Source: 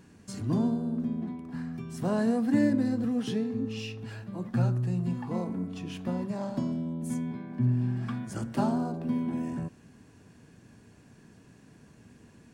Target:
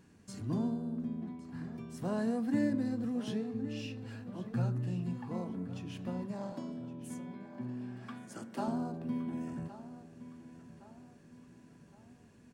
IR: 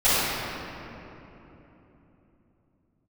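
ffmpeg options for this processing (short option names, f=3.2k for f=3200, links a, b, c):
-filter_complex "[0:a]asettb=1/sr,asplit=3[a][b][c];[a]atrim=end=6.524[d];[b]atrim=start=6.52:end=8.68,asetpts=PTS-STARTPTS,afade=t=in:d=0.004:c=qsin,afade=t=out:st=2.156:d=0.004:c=qsin,highpass=270[e];[c]atrim=start=8.676[f];[d][e]acrossfade=d=0.004:c1=hsin:c2=qsin[g];[g][f]acrossfade=d=0.004:c1=qsin:c2=hsin,asplit=2[h][i];[i]adelay=1115,lowpass=f=5k:p=1,volume=-14dB,asplit=2[j][k];[k]adelay=1115,lowpass=f=5k:p=1,volume=0.46,asplit=2[l][m];[m]adelay=1115,lowpass=f=5k:p=1,volume=0.46,asplit=2[n][o];[o]adelay=1115,lowpass=f=5k:p=1,volume=0.46[p];[h][j][l][n][p]amix=inputs=5:normalize=0,volume=-6.5dB"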